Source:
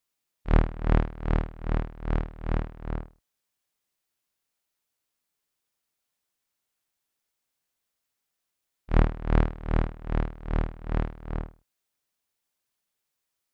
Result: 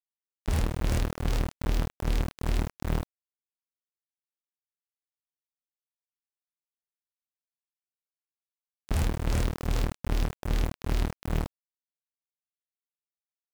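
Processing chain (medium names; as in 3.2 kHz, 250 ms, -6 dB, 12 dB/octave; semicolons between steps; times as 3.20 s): wavefolder -23.5 dBFS; de-hum 163.6 Hz, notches 4; word length cut 6-bit, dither none; trim +3.5 dB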